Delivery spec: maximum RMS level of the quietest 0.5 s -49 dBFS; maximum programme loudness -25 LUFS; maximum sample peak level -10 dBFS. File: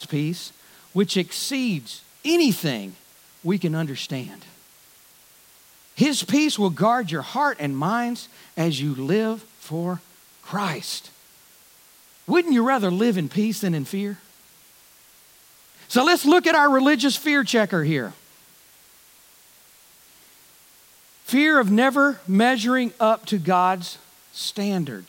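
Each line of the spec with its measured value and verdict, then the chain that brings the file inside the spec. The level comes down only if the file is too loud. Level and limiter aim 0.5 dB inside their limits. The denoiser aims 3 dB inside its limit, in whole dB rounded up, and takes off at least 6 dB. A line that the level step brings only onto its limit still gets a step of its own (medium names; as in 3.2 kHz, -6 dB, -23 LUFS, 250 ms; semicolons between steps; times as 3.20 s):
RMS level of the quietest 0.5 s -53 dBFS: pass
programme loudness -21.5 LUFS: fail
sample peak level -6.0 dBFS: fail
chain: trim -4 dB; peak limiter -10.5 dBFS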